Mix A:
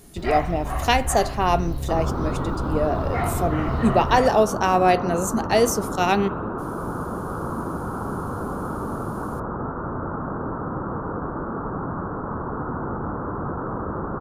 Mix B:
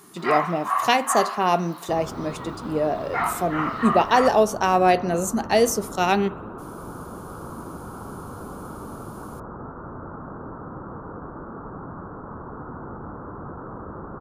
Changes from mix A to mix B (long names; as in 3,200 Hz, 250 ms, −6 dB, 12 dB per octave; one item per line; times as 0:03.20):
first sound: add high-pass with resonance 1,100 Hz, resonance Q 4.7
second sound −8.0 dB